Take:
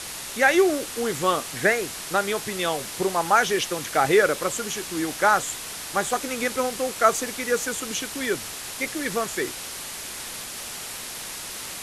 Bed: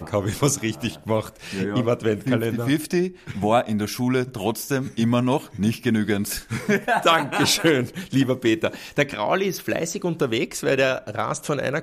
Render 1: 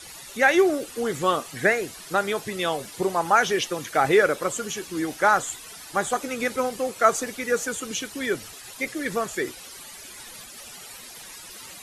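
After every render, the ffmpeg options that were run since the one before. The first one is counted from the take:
ffmpeg -i in.wav -af "afftdn=noise_reduction=13:noise_floor=-36" out.wav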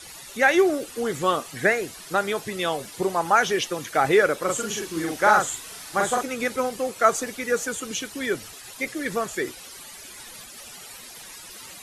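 ffmpeg -i in.wav -filter_complex "[0:a]asettb=1/sr,asplit=3[link_01][link_02][link_03];[link_01]atrim=end=4.444[link_04];[link_02]atrim=start=4.44:end=6.23,asetpts=PTS-STARTPTS,afade=type=in:duration=0.004:curve=qsin,afade=type=out:start_time=1.786:duration=0.004:curve=qsin,asplit=2[link_05][link_06];[link_06]adelay=42,volume=-2dB[link_07];[link_05][link_07]amix=inputs=2:normalize=0,atrim=end_sample=78939[link_08];[link_03]atrim=start=6.226[link_09];[link_04][link_08]acrossfade=duration=0.004:curve1=hsin:curve2=qsin[link_10];[link_10][link_09]acrossfade=duration=0.004:curve1=qsin:curve2=hsin" out.wav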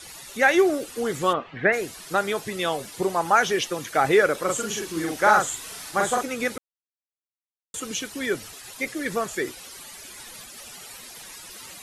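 ffmpeg -i in.wav -filter_complex "[0:a]asplit=3[link_01][link_02][link_03];[link_01]afade=type=out:start_time=1.32:duration=0.02[link_04];[link_02]lowpass=frequency=2900:width=0.5412,lowpass=frequency=2900:width=1.3066,afade=type=in:start_time=1.32:duration=0.02,afade=type=out:start_time=1.72:duration=0.02[link_05];[link_03]afade=type=in:start_time=1.72:duration=0.02[link_06];[link_04][link_05][link_06]amix=inputs=3:normalize=0,asettb=1/sr,asplit=3[link_07][link_08][link_09];[link_07]atrim=end=4.354[link_10];[link_08]atrim=start=4.35:end=5.91,asetpts=PTS-STARTPTS,afade=type=in:duration=0.004:curve=qsin,afade=type=out:start_time=1.556:duration=0.004:curve=qsin,acompressor=mode=upward:threshold=-32dB:ratio=2.5:attack=3.2:release=140:knee=2.83:detection=peak[link_11];[link_09]atrim=start=5.906[link_12];[link_10][link_11]acrossfade=duration=0.004:curve1=hsin:curve2=qsin[link_13];[link_13][link_12]acrossfade=duration=0.004:curve1=qsin:curve2=hsin,asplit=3[link_14][link_15][link_16];[link_14]atrim=end=6.58,asetpts=PTS-STARTPTS,afade=type=out:start_time=6.576:duration=0.004:curve=hsin[link_17];[link_15]atrim=start=6.58:end=7.74,asetpts=PTS-STARTPTS,volume=0[link_18];[link_16]atrim=start=7.74,asetpts=PTS-STARTPTS,afade=type=in:duration=0.004:curve=hsin[link_19];[link_17][link_18][link_19]concat=n=3:v=0:a=1" out.wav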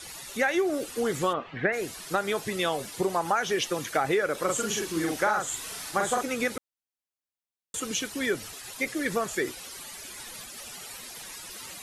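ffmpeg -i in.wav -af "acompressor=threshold=-22dB:ratio=6" out.wav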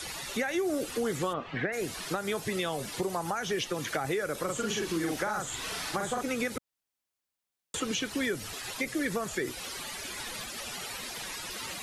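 ffmpeg -i in.wav -filter_complex "[0:a]acrossover=split=210|5200[link_01][link_02][link_03];[link_01]acompressor=threshold=-44dB:ratio=4[link_04];[link_02]acompressor=threshold=-35dB:ratio=4[link_05];[link_03]acompressor=threshold=-50dB:ratio=4[link_06];[link_04][link_05][link_06]amix=inputs=3:normalize=0,asplit=2[link_07][link_08];[link_08]alimiter=level_in=4.5dB:limit=-24dB:level=0:latency=1:release=129,volume=-4.5dB,volume=-1dB[link_09];[link_07][link_09]amix=inputs=2:normalize=0" out.wav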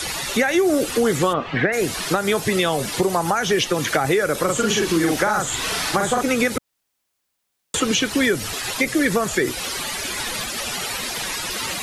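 ffmpeg -i in.wav -af "volume=12dB" out.wav

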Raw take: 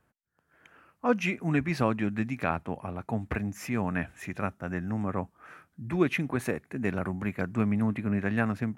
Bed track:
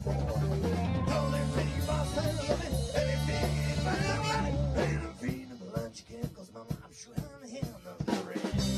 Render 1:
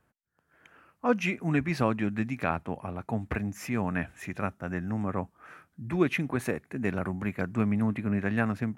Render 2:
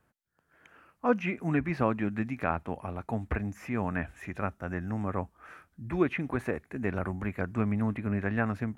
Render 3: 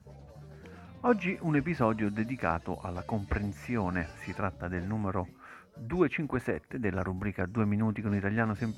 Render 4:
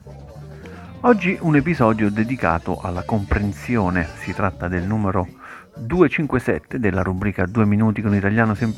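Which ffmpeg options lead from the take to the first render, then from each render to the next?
ffmpeg -i in.wav -af anull out.wav
ffmpeg -i in.wav -filter_complex "[0:a]acrossover=split=2500[link_01][link_02];[link_02]acompressor=threshold=-55dB:ratio=4:attack=1:release=60[link_03];[link_01][link_03]amix=inputs=2:normalize=0,asubboost=boost=6.5:cutoff=54" out.wav
ffmpeg -i in.wav -i bed.wav -filter_complex "[1:a]volume=-19dB[link_01];[0:a][link_01]amix=inputs=2:normalize=0" out.wav
ffmpeg -i in.wav -af "volume=12dB,alimiter=limit=-1dB:level=0:latency=1" out.wav

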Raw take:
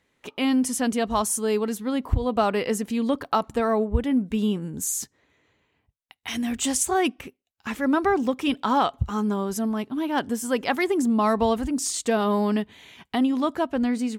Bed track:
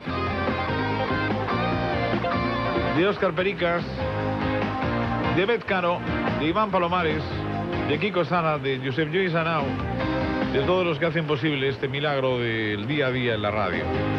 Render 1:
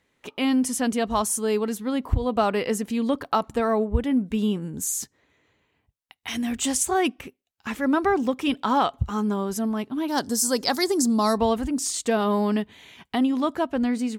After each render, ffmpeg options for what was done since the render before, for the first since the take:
ffmpeg -i in.wav -filter_complex "[0:a]asettb=1/sr,asplit=3[link_01][link_02][link_03];[link_01]atrim=end=10.084[link_04];[link_02]atrim=start=10.08:end=11.38,asetpts=PTS-STARTPTS,afade=type=in:duration=0.004:curve=qsin,afade=type=out:start_time=1.296:duration=0.004:curve=qsin,highshelf=frequency=3600:width_type=q:width=3:gain=9[link_05];[link_03]atrim=start=11.376[link_06];[link_04][link_05]acrossfade=duration=0.004:curve1=hsin:curve2=qsin[link_07];[link_07][link_06]acrossfade=duration=0.004:curve1=qsin:curve2=hsin" out.wav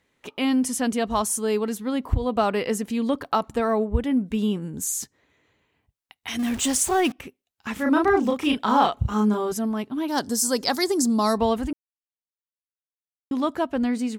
ffmpeg -i in.wav -filter_complex "[0:a]asettb=1/sr,asplit=3[link_01][link_02][link_03];[link_01]atrim=end=6.394[link_04];[link_02]atrim=start=6.39:end=7.12,asetpts=PTS-STARTPTS,afade=type=in:duration=0.004:curve=qsin,afade=type=out:start_time=0.726:duration=0.004:curve=qsin,aeval=exprs='val(0)+0.5*0.0299*sgn(val(0))':channel_layout=same[link_05];[link_03]atrim=start=7.116[link_06];[link_04][link_05]acrossfade=duration=0.004:curve1=hsin:curve2=qsin[link_07];[link_07][link_06]acrossfade=duration=0.004:curve1=qsin:curve2=hsin,asettb=1/sr,asplit=3[link_08][link_09][link_10];[link_08]atrim=end=7.734[link_11];[link_09]atrim=start=7.73:end=9.52,asetpts=PTS-STARTPTS,afade=type=in:duration=0.004:curve=qsin,afade=type=out:start_time=1.786:duration=0.004:curve=qsin,asplit=2[link_12][link_13];[link_13]adelay=33,volume=-2dB[link_14];[link_12][link_14]amix=inputs=2:normalize=0,atrim=end_sample=78939[link_15];[link_10]atrim=start=9.516[link_16];[link_11][link_15]acrossfade=duration=0.004:curve1=hsin:curve2=qsin[link_17];[link_17][link_16]acrossfade=duration=0.004:curve1=qsin:curve2=hsin,asplit=3[link_18][link_19][link_20];[link_18]atrim=end=11.73,asetpts=PTS-STARTPTS,afade=type=out:start_time=11.726:duration=0.004:curve=hsin[link_21];[link_19]atrim=start=11.73:end=13.31,asetpts=PTS-STARTPTS,volume=0[link_22];[link_20]atrim=start=13.31,asetpts=PTS-STARTPTS,afade=type=in:duration=0.004:curve=hsin[link_23];[link_21][link_22][link_23]concat=n=3:v=0:a=1" out.wav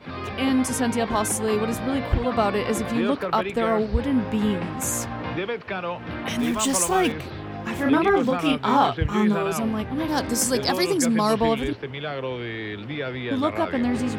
ffmpeg -i in.wav -i bed.wav -filter_complex "[1:a]volume=-6dB[link_01];[0:a][link_01]amix=inputs=2:normalize=0" out.wav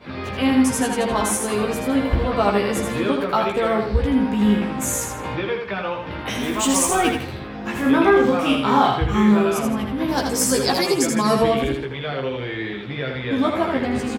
ffmpeg -i in.wav -filter_complex "[0:a]asplit=2[link_01][link_02];[link_02]adelay=15,volume=-3dB[link_03];[link_01][link_03]amix=inputs=2:normalize=0,aecho=1:1:81|162|243|324:0.562|0.18|0.0576|0.0184" out.wav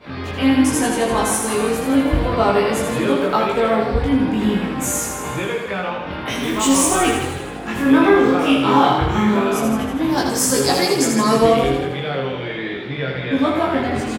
ffmpeg -i in.wav -filter_complex "[0:a]asplit=2[link_01][link_02];[link_02]adelay=22,volume=-2dB[link_03];[link_01][link_03]amix=inputs=2:normalize=0,asplit=2[link_04][link_05];[link_05]asplit=5[link_06][link_07][link_08][link_09][link_10];[link_06]adelay=160,afreqshift=38,volume=-10dB[link_11];[link_07]adelay=320,afreqshift=76,volume=-16.9dB[link_12];[link_08]adelay=480,afreqshift=114,volume=-23.9dB[link_13];[link_09]adelay=640,afreqshift=152,volume=-30.8dB[link_14];[link_10]adelay=800,afreqshift=190,volume=-37.7dB[link_15];[link_11][link_12][link_13][link_14][link_15]amix=inputs=5:normalize=0[link_16];[link_04][link_16]amix=inputs=2:normalize=0" out.wav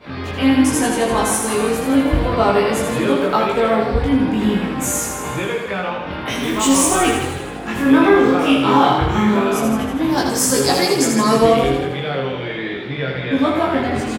ffmpeg -i in.wav -af "volume=1dB,alimiter=limit=-2dB:level=0:latency=1" out.wav

